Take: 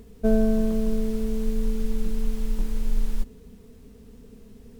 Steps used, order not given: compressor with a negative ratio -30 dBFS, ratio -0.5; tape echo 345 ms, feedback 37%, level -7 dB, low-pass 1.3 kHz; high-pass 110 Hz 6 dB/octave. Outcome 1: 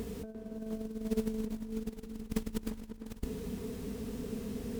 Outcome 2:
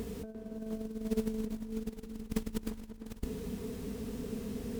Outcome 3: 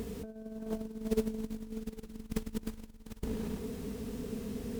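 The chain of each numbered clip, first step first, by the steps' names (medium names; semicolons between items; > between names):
compressor with a negative ratio > high-pass > tape echo; compressor with a negative ratio > tape echo > high-pass; tape echo > compressor with a negative ratio > high-pass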